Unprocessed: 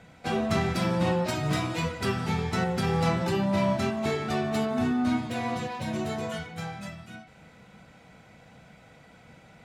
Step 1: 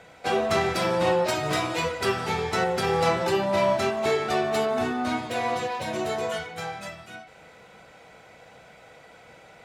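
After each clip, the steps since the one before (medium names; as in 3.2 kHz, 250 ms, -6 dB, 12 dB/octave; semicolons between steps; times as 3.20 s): resonant low shelf 310 Hz -8.5 dB, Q 1.5; trim +4.5 dB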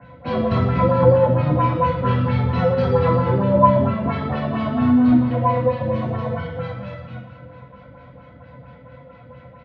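LFO low-pass sine 4.4 Hz 360–4000 Hz; feedback delay 447 ms, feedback 45%, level -18 dB; reverberation RT60 1.0 s, pre-delay 3 ms, DRR -8 dB; trim -18 dB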